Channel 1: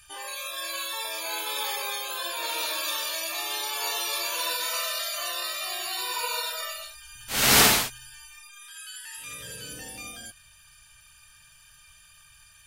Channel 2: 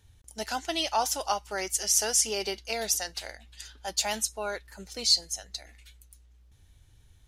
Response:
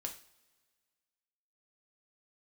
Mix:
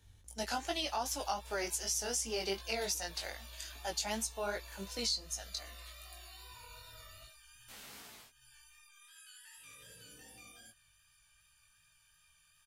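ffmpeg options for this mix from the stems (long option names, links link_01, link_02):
-filter_complex "[0:a]acompressor=threshold=-37dB:ratio=8,adelay=400,volume=-11dB[link_01];[1:a]volume=1dB[link_02];[link_01][link_02]amix=inputs=2:normalize=0,acrossover=split=330[link_03][link_04];[link_04]acompressor=threshold=-30dB:ratio=6[link_05];[link_03][link_05]amix=inputs=2:normalize=0,flanger=delay=17:depth=3.8:speed=2.6"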